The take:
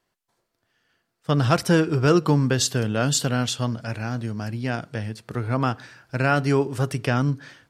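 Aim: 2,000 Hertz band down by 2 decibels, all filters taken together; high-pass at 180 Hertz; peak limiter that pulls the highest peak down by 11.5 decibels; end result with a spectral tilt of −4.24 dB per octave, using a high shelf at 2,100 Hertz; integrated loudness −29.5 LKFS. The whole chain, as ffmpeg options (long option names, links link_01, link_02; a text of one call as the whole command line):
ffmpeg -i in.wav -af "highpass=180,equalizer=frequency=2000:width_type=o:gain=-8,highshelf=frequency=2100:gain=8,volume=-2.5dB,alimiter=limit=-17dB:level=0:latency=1" out.wav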